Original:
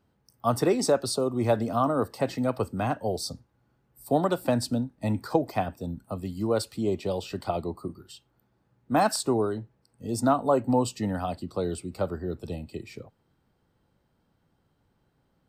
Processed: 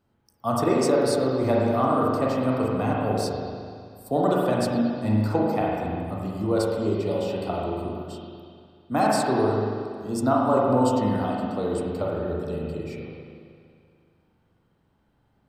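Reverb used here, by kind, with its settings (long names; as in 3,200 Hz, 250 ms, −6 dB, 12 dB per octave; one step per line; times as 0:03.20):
spring reverb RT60 2.2 s, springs 38/47 ms, chirp 75 ms, DRR −4 dB
level −2 dB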